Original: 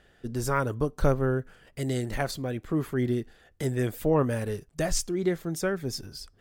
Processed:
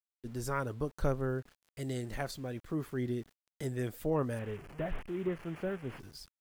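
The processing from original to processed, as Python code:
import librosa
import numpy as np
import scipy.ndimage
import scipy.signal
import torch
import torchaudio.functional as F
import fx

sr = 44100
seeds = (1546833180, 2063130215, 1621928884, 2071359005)

y = fx.delta_mod(x, sr, bps=16000, step_db=-36.0, at=(4.39, 6.0))
y = np.where(np.abs(y) >= 10.0 ** (-46.5 / 20.0), y, 0.0)
y = F.gain(torch.from_numpy(y), -8.0).numpy()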